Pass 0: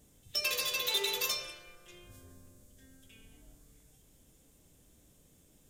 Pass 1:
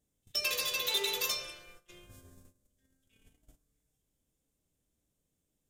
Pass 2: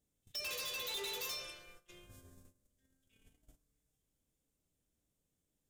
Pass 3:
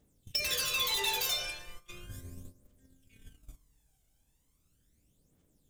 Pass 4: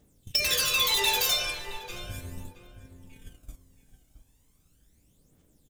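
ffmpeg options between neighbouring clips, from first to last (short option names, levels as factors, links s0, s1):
-af "agate=range=0.126:threshold=0.002:ratio=16:detection=peak"
-af "asoftclip=type=tanh:threshold=0.0188,volume=0.708"
-af "aphaser=in_gain=1:out_gain=1:delay=1.4:decay=0.61:speed=0.37:type=triangular,volume=2.51"
-filter_complex "[0:a]asplit=2[s0][s1];[s1]adelay=669,lowpass=f=1600:p=1,volume=0.299,asplit=2[s2][s3];[s3]adelay=669,lowpass=f=1600:p=1,volume=0.24,asplit=2[s4][s5];[s5]adelay=669,lowpass=f=1600:p=1,volume=0.24[s6];[s0][s2][s4][s6]amix=inputs=4:normalize=0,volume=2.11"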